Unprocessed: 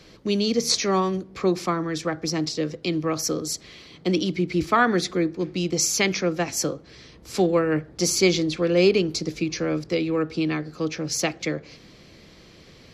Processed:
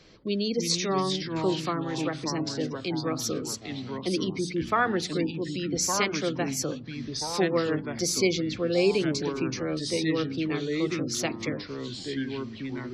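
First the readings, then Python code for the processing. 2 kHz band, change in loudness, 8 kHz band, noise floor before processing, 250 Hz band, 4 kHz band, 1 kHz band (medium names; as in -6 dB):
-4.0 dB, -4.5 dB, -4.5 dB, -50 dBFS, -3.5 dB, -3.5 dB, -3.5 dB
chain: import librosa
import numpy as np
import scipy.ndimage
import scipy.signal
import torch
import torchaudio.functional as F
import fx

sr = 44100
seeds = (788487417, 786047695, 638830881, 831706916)

y = fx.hum_notches(x, sr, base_hz=60, count=5)
y = fx.spec_gate(y, sr, threshold_db=-30, keep='strong')
y = fx.echo_pitch(y, sr, ms=269, semitones=-3, count=3, db_per_echo=-6.0)
y = F.gain(torch.from_numpy(y), -5.0).numpy()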